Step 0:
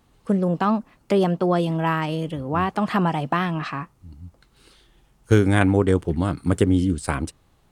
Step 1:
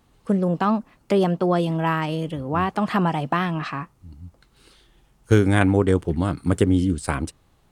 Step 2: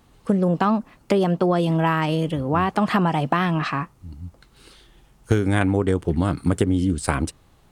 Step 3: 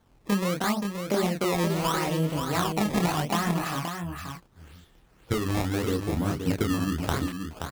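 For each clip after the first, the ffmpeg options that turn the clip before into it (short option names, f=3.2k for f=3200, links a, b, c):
-af anull
-af "acompressor=threshold=-20dB:ratio=6,volume=4.5dB"
-af "flanger=delay=22.5:depth=7:speed=0.54,acrusher=samples=17:mix=1:aa=0.000001:lfo=1:lforange=27.2:lforate=0.77,aecho=1:1:526:0.473,volume=-3.5dB"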